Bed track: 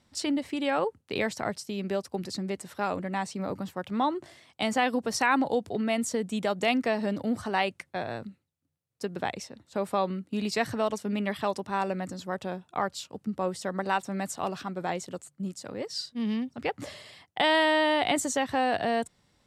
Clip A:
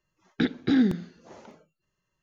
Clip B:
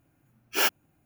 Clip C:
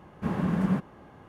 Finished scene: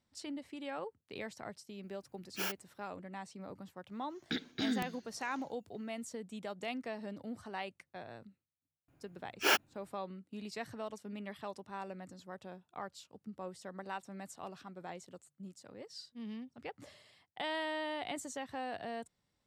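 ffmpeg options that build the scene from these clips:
ffmpeg -i bed.wav -i cue0.wav -i cue1.wav -filter_complex "[2:a]asplit=2[link_01][link_02];[0:a]volume=-14.5dB[link_03];[link_01]alimiter=limit=-17dB:level=0:latency=1:release=186[link_04];[1:a]crystalizer=i=7:c=0[link_05];[link_02]highshelf=frequency=7000:gain=-10.5[link_06];[link_04]atrim=end=1.05,asetpts=PTS-STARTPTS,volume=-9dB,afade=type=in:duration=0.004:curve=hsin,afade=type=out:start_time=1.046:duration=0.004:curve=hsin,adelay=1830[link_07];[link_05]atrim=end=2.22,asetpts=PTS-STARTPTS,volume=-14.5dB,afade=type=in:duration=0.004:curve=hsin,afade=type=out:start_time=2.216:duration=0.004:curve=hsin,adelay=3910[link_08];[link_06]atrim=end=1.05,asetpts=PTS-STARTPTS,volume=-1.5dB,afade=type=in:duration=0.004:curve=hsin,afade=type=out:start_time=1.046:duration=0.004:curve=hsin,adelay=8880[link_09];[link_03][link_07][link_08][link_09]amix=inputs=4:normalize=0" out.wav

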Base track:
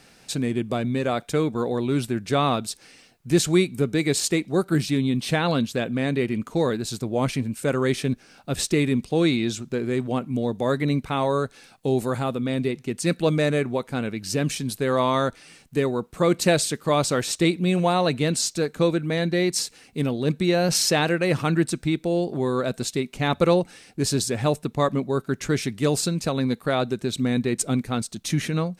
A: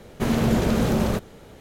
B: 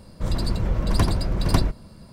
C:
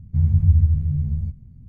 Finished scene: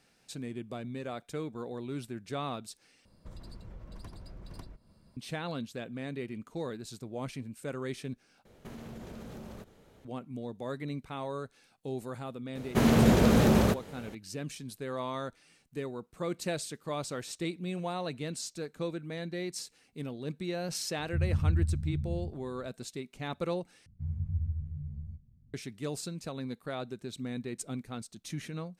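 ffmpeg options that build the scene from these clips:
ffmpeg -i bed.wav -i cue0.wav -i cue1.wav -i cue2.wav -filter_complex "[1:a]asplit=2[link_01][link_02];[3:a]asplit=2[link_03][link_04];[0:a]volume=-14.5dB[link_05];[2:a]acompressor=threshold=-27dB:ratio=5:attack=25:release=252:knee=1:detection=rms[link_06];[link_01]acompressor=threshold=-28dB:ratio=6:attack=3.2:release=140:knee=1:detection=peak[link_07];[link_02]highpass=47[link_08];[link_03]lowpass=frequency=240:width_type=q:width=1.9[link_09];[link_05]asplit=4[link_10][link_11][link_12][link_13];[link_10]atrim=end=3.054[link_14];[link_06]atrim=end=2.12,asetpts=PTS-STARTPTS,volume=-16.5dB[link_15];[link_11]atrim=start=5.166:end=8.454[link_16];[link_07]atrim=end=1.6,asetpts=PTS-STARTPTS,volume=-13.5dB[link_17];[link_12]atrim=start=10.046:end=23.864[link_18];[link_04]atrim=end=1.68,asetpts=PTS-STARTPTS,volume=-17.5dB[link_19];[link_13]atrim=start=25.536[link_20];[link_08]atrim=end=1.6,asetpts=PTS-STARTPTS,volume=-1dB,afade=type=in:duration=0.004:curve=hsin,afade=type=out:start_time=1.596:duration=0.004:curve=hsin,adelay=12550[link_21];[link_09]atrim=end=1.68,asetpts=PTS-STARTPTS,volume=-13dB,afade=type=in:duration=0.004:curve=hsin,afade=type=out:start_time=1.676:duration=0.004:curve=hsin,adelay=20990[link_22];[link_14][link_15]acrossfade=duration=0.004:curve1=hsin:curve2=hsin[link_23];[link_23][link_16]acrossfade=duration=0.004:curve1=hsin:curve2=hsin[link_24];[link_24][link_17]acrossfade=duration=0.004:curve1=hsin:curve2=hsin[link_25];[link_25][link_18]acrossfade=duration=0.004:curve1=hsin:curve2=hsin[link_26];[link_26][link_19]acrossfade=duration=0.004:curve1=hsin:curve2=hsin[link_27];[link_27][link_20]acrossfade=duration=0.004:curve1=hsin:curve2=hsin[link_28];[link_28][link_21][link_22]amix=inputs=3:normalize=0" out.wav

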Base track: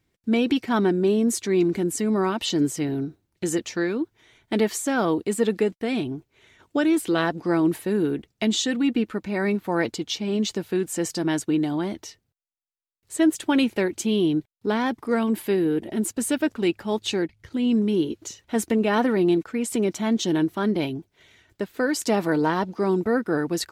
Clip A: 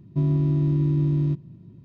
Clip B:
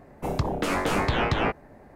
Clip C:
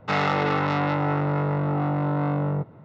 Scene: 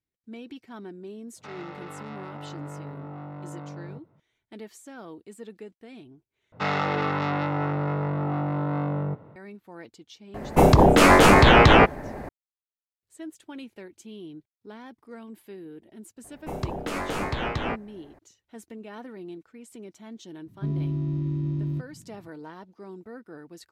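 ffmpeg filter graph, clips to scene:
ffmpeg -i bed.wav -i cue0.wav -i cue1.wav -i cue2.wav -filter_complex "[3:a]asplit=2[link_01][link_02];[2:a]asplit=2[link_03][link_04];[0:a]volume=-20dB[link_05];[link_01]alimiter=limit=-17dB:level=0:latency=1:release=24[link_06];[link_02]asplit=2[link_07][link_08];[link_08]adelay=220,highpass=300,lowpass=3400,asoftclip=type=hard:threshold=-18.5dB,volume=-20dB[link_09];[link_07][link_09]amix=inputs=2:normalize=0[link_10];[link_03]alimiter=level_in=18.5dB:limit=-1dB:release=50:level=0:latency=1[link_11];[link_05]asplit=2[link_12][link_13];[link_12]atrim=end=6.524[link_14];[link_10]atrim=end=2.84,asetpts=PTS-STARTPTS,volume=-3dB[link_15];[link_13]atrim=start=9.356[link_16];[link_06]atrim=end=2.84,asetpts=PTS-STARTPTS,volume=-15dB,afade=type=in:duration=0.004:curve=hsin,afade=type=out:start_time=2.836:duration=0.004:curve=hsin,adelay=1360[link_17];[link_11]atrim=end=1.95,asetpts=PTS-STARTPTS,volume=-4.5dB,afade=type=in:duration=0.004:curve=hsin,afade=type=out:start_time=1.946:duration=0.004:curve=hsin,adelay=455994S[link_18];[link_04]atrim=end=1.95,asetpts=PTS-STARTPTS,volume=-4.5dB,afade=type=in:duration=0.004:curve=hsin,afade=type=out:start_time=1.946:duration=0.004:curve=hsin,adelay=16240[link_19];[1:a]atrim=end=1.84,asetpts=PTS-STARTPTS,volume=-6.5dB,afade=type=in:duration=0.004:curve=hsin,afade=type=out:start_time=1.836:duration=0.004:curve=hsin,adelay=20460[link_20];[link_14][link_15]acrossfade=duration=0.004:curve1=hsin:curve2=hsin[link_21];[link_21][link_16]acrossfade=duration=0.004:curve1=hsin:curve2=hsin[link_22];[link_22][link_17][link_18][link_19][link_20]amix=inputs=5:normalize=0" out.wav

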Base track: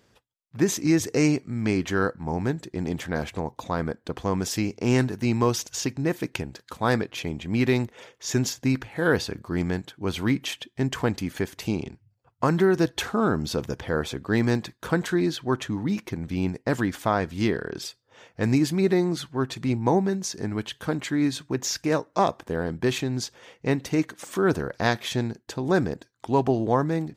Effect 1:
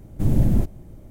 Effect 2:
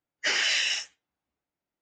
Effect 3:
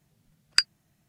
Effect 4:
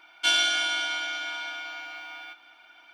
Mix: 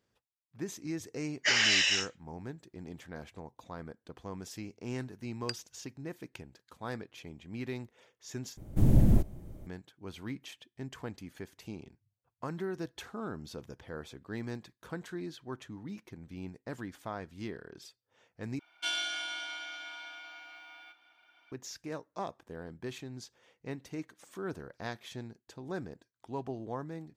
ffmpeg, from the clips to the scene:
ffmpeg -i bed.wav -i cue0.wav -i cue1.wav -i cue2.wav -i cue3.wav -filter_complex "[0:a]volume=-16.5dB,asplit=3[link_01][link_02][link_03];[link_01]atrim=end=8.574[link_04];[1:a]atrim=end=1.1,asetpts=PTS-STARTPTS,volume=-4dB[link_05];[link_02]atrim=start=9.666:end=18.594[link_06];[4:a]atrim=end=2.93,asetpts=PTS-STARTPTS,volume=-11dB[link_07];[link_03]atrim=start=21.516[link_08];[2:a]atrim=end=1.81,asetpts=PTS-STARTPTS,volume=-0.5dB,afade=type=in:duration=0.004:curve=hsin,afade=type=out:start_time=1.806:duration=0.004:curve=hsin,adelay=1210[link_09];[3:a]atrim=end=1.08,asetpts=PTS-STARTPTS,volume=-17.5dB,afade=type=in:duration=0.004:curve=hsin,afade=type=out:start_time=1.076:duration=0.004:curve=hsin,adelay=4910[link_10];[link_04][link_05]acrossfade=duration=0.004:curve1=hsin:curve2=hsin[link_11];[link_11][link_06]acrossfade=duration=0.004:curve1=hsin:curve2=hsin[link_12];[link_12][link_07]acrossfade=duration=0.004:curve1=hsin:curve2=hsin[link_13];[link_13][link_08]acrossfade=duration=0.004:curve1=hsin:curve2=hsin[link_14];[link_14][link_09][link_10]amix=inputs=3:normalize=0" out.wav

